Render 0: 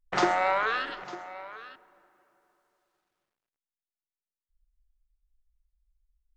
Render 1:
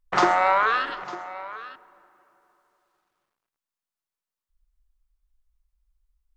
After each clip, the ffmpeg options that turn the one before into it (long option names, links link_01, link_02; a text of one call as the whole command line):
ffmpeg -i in.wav -af "equalizer=frequency=1100:width=1.8:gain=6.5,volume=2.5dB" out.wav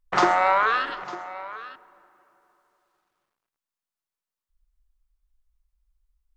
ffmpeg -i in.wav -af anull out.wav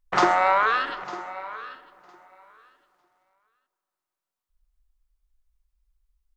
ffmpeg -i in.wav -af "aecho=1:1:955|1910:0.0708|0.0191" out.wav